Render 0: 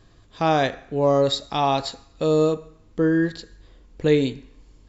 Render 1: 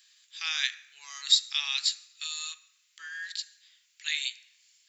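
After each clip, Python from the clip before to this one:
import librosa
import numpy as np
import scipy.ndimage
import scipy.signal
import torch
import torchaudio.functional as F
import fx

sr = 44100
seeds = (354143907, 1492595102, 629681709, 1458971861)

y = scipy.signal.sosfilt(scipy.signal.cheby2(4, 60, 600.0, 'highpass', fs=sr, output='sos'), x)
y = fx.high_shelf(y, sr, hz=6400.0, db=10.0)
y = y * librosa.db_to_amplitude(2.0)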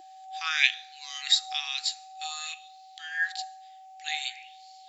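y = x + 10.0 ** (-46.0 / 20.0) * np.sin(2.0 * np.pi * 760.0 * np.arange(len(x)) / sr)
y = fx.bell_lfo(y, sr, hz=0.53, low_hz=330.0, high_hz=4400.0, db=16)
y = y * librosa.db_to_amplitude(-2.5)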